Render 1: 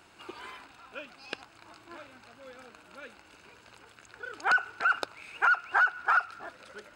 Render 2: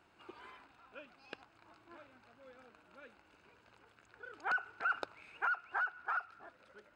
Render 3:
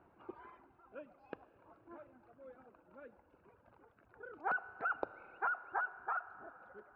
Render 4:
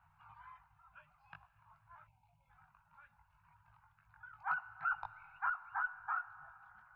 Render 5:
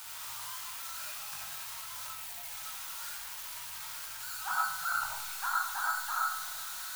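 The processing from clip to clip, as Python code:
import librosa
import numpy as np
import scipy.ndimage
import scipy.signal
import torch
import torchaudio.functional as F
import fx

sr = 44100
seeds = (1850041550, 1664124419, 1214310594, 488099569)

y1 = fx.high_shelf(x, sr, hz=4000.0, db=-12.0)
y1 = fx.rider(y1, sr, range_db=4, speed_s=0.5)
y1 = y1 * 10.0 ** (-8.5 / 20.0)
y2 = scipy.signal.sosfilt(scipy.signal.butter(2, 1000.0, 'lowpass', fs=sr, output='sos'), y1)
y2 = fx.dereverb_blind(y2, sr, rt60_s=1.7)
y2 = fx.rev_schroeder(y2, sr, rt60_s=4.0, comb_ms=26, drr_db=14.0)
y2 = y2 * 10.0 ** (5.0 / 20.0)
y3 = fx.chorus_voices(y2, sr, voices=6, hz=0.59, base_ms=20, depth_ms=1.6, mix_pct=40)
y3 = fx.spec_box(y3, sr, start_s=2.07, length_s=0.43, low_hz=1000.0, high_hz=2100.0, gain_db=-21)
y3 = scipy.signal.sosfilt(scipy.signal.ellip(3, 1.0, 50, [150.0, 900.0], 'bandstop', fs=sr, output='sos'), y3)
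y3 = y3 * 10.0 ** (4.0 / 20.0)
y4 = y3 + 0.5 * 10.0 ** (-32.0 / 20.0) * np.diff(np.sign(y3), prepend=np.sign(y3[:1]))
y4 = fx.rev_freeverb(y4, sr, rt60_s=0.69, hf_ratio=0.5, predelay_ms=30, drr_db=-3.5)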